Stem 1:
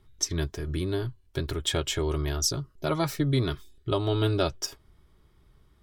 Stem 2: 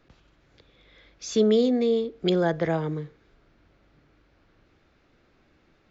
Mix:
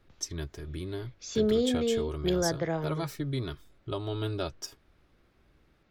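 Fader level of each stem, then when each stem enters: −7.5, −5.5 decibels; 0.00, 0.00 seconds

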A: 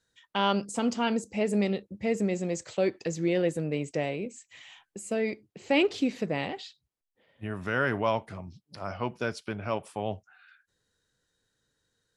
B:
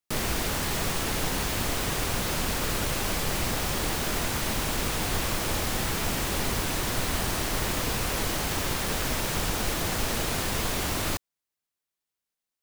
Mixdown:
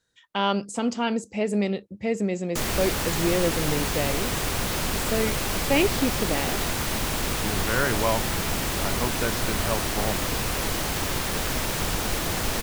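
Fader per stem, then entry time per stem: +2.0, +1.5 decibels; 0.00, 2.45 seconds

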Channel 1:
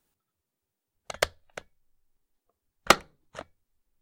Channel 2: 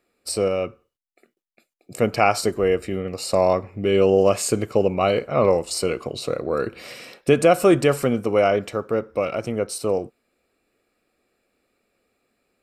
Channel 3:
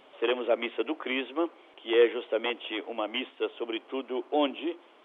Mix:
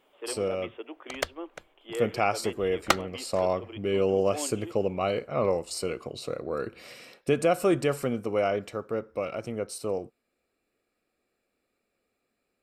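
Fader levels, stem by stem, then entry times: −4.5, −8.0, −10.5 decibels; 0.00, 0.00, 0.00 seconds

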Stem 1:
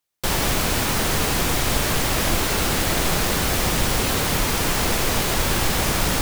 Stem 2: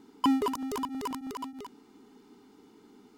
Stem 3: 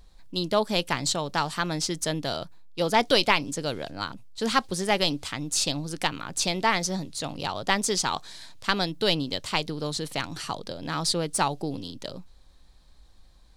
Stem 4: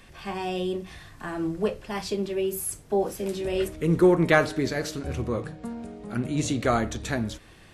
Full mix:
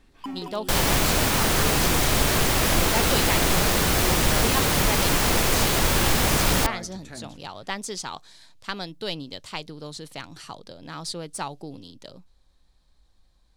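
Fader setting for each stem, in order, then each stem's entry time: 0.0, −10.5, −7.0, −13.5 decibels; 0.45, 0.00, 0.00, 0.00 seconds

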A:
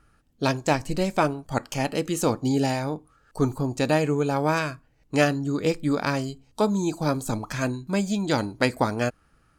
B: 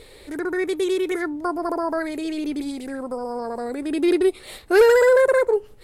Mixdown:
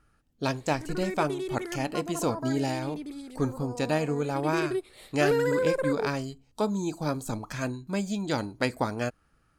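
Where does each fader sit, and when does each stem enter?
−5.0, −11.5 decibels; 0.00, 0.50 seconds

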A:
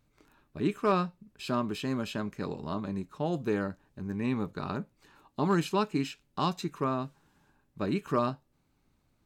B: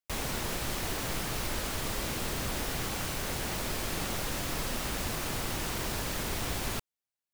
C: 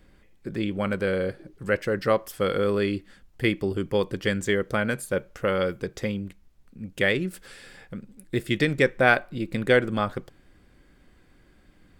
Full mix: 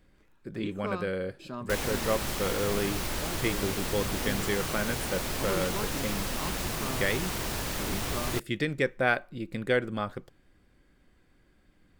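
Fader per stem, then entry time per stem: −9.0, +1.0, −6.5 decibels; 0.00, 1.60, 0.00 seconds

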